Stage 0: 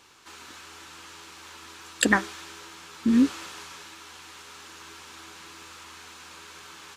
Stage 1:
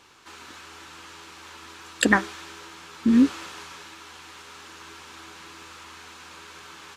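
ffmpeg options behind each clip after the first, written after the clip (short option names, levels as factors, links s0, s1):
-af "highshelf=f=4700:g=-5.5,volume=1.33"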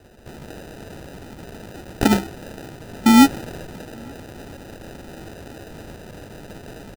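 -filter_complex "[0:a]acrossover=split=430|3000[s0][s1][s2];[s1]acompressor=threshold=0.0224:ratio=6[s3];[s0][s3][s2]amix=inputs=3:normalize=0,acrusher=samples=40:mix=1:aa=0.000001,asplit=2[s4][s5];[s5]adelay=874.6,volume=0.0316,highshelf=f=4000:g=-19.7[s6];[s4][s6]amix=inputs=2:normalize=0,volume=2.11"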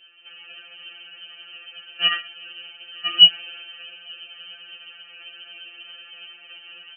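-af "lowpass=f=2700:t=q:w=0.5098,lowpass=f=2700:t=q:w=0.6013,lowpass=f=2700:t=q:w=0.9,lowpass=f=2700:t=q:w=2.563,afreqshift=-3200,afftfilt=real='re*2.83*eq(mod(b,8),0)':imag='im*2.83*eq(mod(b,8),0)':win_size=2048:overlap=0.75,volume=0.841"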